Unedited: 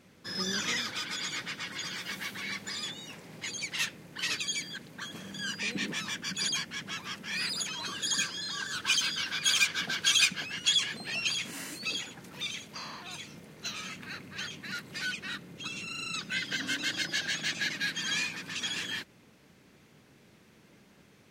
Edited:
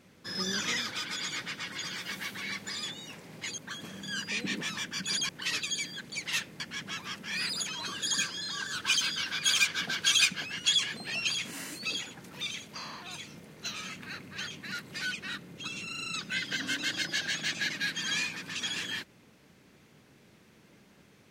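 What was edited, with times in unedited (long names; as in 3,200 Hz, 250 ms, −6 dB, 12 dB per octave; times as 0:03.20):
0:03.58–0:04.06: swap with 0:04.89–0:06.60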